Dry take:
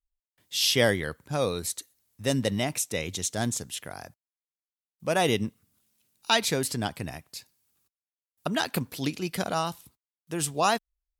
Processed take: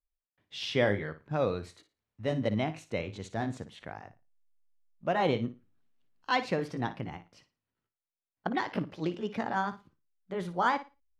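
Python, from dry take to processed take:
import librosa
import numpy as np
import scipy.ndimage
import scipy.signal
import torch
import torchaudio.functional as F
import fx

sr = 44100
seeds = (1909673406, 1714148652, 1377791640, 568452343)

p1 = fx.pitch_glide(x, sr, semitones=3.5, runs='starting unshifted')
p2 = fx.backlash(p1, sr, play_db=-41.0)
p3 = p1 + (p2 * librosa.db_to_amplitude(-9.5))
p4 = scipy.signal.sosfilt(scipy.signal.butter(2, 2200.0, 'lowpass', fs=sr, output='sos'), p3)
p5 = fx.room_flutter(p4, sr, wall_m=9.8, rt60_s=0.26)
y = p5 * librosa.db_to_amplitude(-4.0)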